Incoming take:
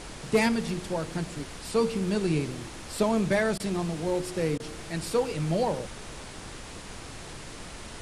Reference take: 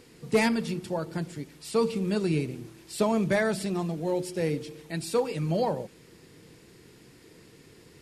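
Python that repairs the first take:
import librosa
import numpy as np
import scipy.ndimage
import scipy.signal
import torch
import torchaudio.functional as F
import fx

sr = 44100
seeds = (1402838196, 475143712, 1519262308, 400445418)

y = fx.fix_interpolate(x, sr, at_s=(3.58, 4.58), length_ms=17.0)
y = fx.noise_reduce(y, sr, print_start_s=6.39, print_end_s=6.89, reduce_db=12.0)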